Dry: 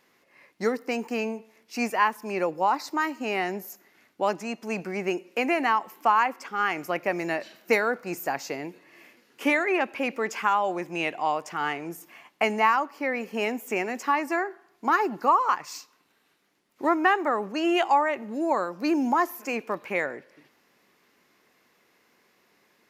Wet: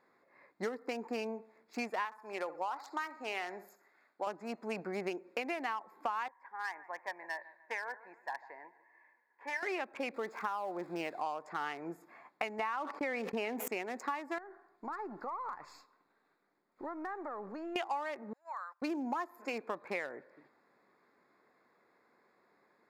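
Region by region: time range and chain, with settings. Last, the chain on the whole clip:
2.05–4.27 s: high-pass 840 Hz 6 dB/octave + feedback delay 65 ms, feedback 38%, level -14.5 dB
6.28–9.63 s: two resonant band-passes 1.3 kHz, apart 0.84 oct + feedback delay 148 ms, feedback 41%, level -17.5 dB
10.14–11.21 s: zero-crossing glitches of -26 dBFS + low-pass 1.5 kHz 6 dB/octave + upward compressor, threshold -42 dBFS
12.59–13.68 s: gate -45 dBFS, range -25 dB + treble shelf 5.3 kHz -11.5 dB + level flattener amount 70%
14.38–17.76 s: partial rectifier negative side -3 dB + compression 4:1, threshold -36 dBFS
18.33–18.82 s: high-pass 1.1 kHz 24 dB/octave + gate -47 dBFS, range -17 dB + compression 2:1, threshold -40 dBFS
whole clip: local Wiener filter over 15 samples; bass shelf 310 Hz -10 dB; compression 6:1, threshold -34 dBFS

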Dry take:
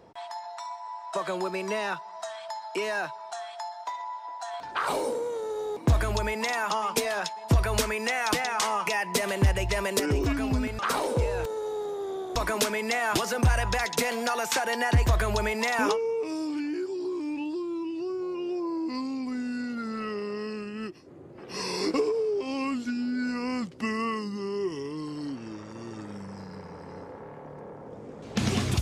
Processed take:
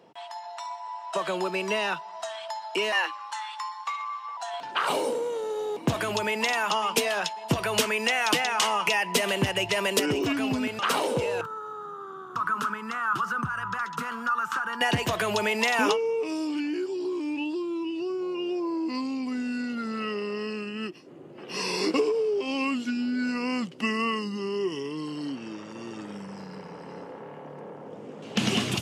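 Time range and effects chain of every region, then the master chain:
2.92–4.37 s: dynamic bell 2.1 kHz, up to +6 dB, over -47 dBFS, Q 1.5 + frequency shift +170 Hz
11.41–14.81 s: FFT filter 160 Hz 0 dB, 660 Hz -20 dB, 1.3 kHz +14 dB, 2.1 kHz -16 dB + compression 2:1, threshold -27 dBFS
whole clip: high-pass 140 Hz 24 dB/octave; peaking EQ 2.9 kHz +9.5 dB 0.35 oct; level rider gain up to 3.5 dB; trim -2 dB

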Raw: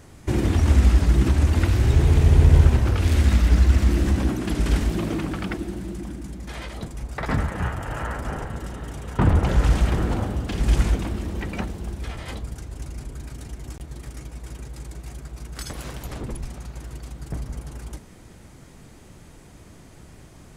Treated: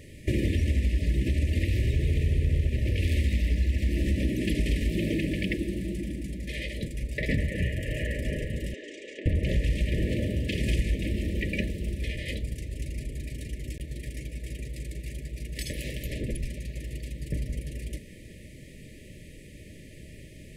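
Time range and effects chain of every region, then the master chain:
8.74–9.26 s: elliptic band-pass 320–7000 Hz + compression 8:1, threshold -34 dBFS
10.07–10.79 s: high-pass 53 Hz 24 dB/octave + hum notches 50/100/150/200/250/300 Hz
whole clip: FFT band-reject 640–1700 Hz; fifteen-band graphic EQ 1 kHz +4 dB, 2.5 kHz +6 dB, 6.3 kHz -5 dB; compression 5:1, threshold -22 dBFS

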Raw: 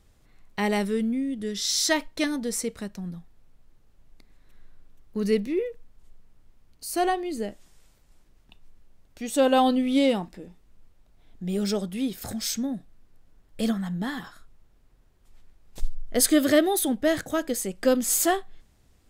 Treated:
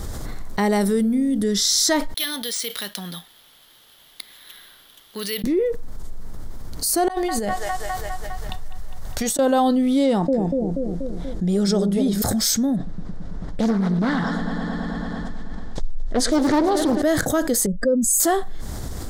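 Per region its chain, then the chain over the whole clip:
0.81–1.44 s: treble shelf 7.6 kHz +9 dB + band-stop 7 kHz, Q 15 + de-hum 46.49 Hz, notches 18
2.14–5.44 s: band-pass filter 3.2 kHz, Q 4.9 + careless resampling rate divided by 3×, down none, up hold
7.08–9.39 s: peaking EQ 300 Hz -11.5 dB 1.2 oct + feedback echo behind a band-pass 203 ms, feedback 59%, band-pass 1.5 kHz, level -10 dB + compressor with a negative ratio -39 dBFS, ratio -0.5
10.04–12.22 s: low-pass 8.9 kHz + bucket-brigade echo 240 ms, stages 1024, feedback 41%, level -4 dB
12.76–17.02 s: distance through air 110 m + multi-head delay 110 ms, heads first and second, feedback 72%, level -18 dB + loudspeaker Doppler distortion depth 0.59 ms
17.66–18.20 s: spectral contrast enhancement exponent 1.9 + static phaser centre 530 Hz, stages 8
whole clip: peaking EQ 2.6 kHz -12.5 dB 0.59 oct; level flattener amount 70%

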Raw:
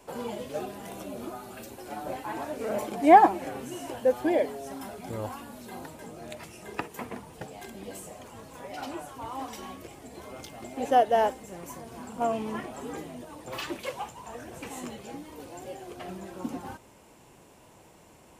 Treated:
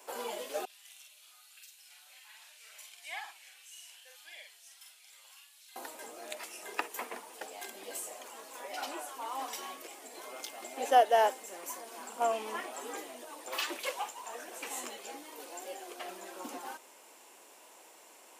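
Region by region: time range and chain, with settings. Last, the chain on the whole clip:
0.65–5.76 s: band-pass filter 2.9 kHz, Q 1.3 + differentiator + doubling 47 ms -3 dB
whole clip: Bessel high-pass 440 Hz, order 6; tilt EQ +1.5 dB/octave

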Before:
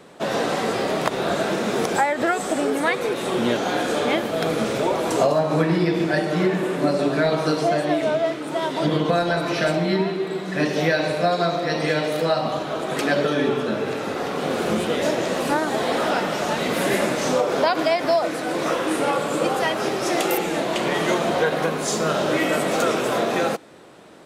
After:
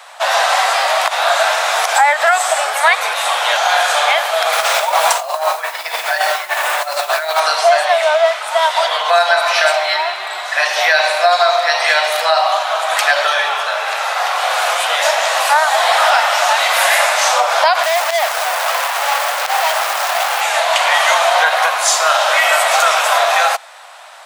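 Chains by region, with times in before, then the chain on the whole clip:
4.52–7.40 s: compressor with a negative ratio -23 dBFS, ratio -0.5 + modulation noise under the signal 22 dB
17.83–20.41 s: low-pass 2.6 kHz + peaking EQ 1.9 kHz -10.5 dB 1.4 oct + companded quantiser 2-bit
whole clip: steep high-pass 670 Hz 48 dB/octave; loudness maximiser +14.5 dB; trim -1 dB

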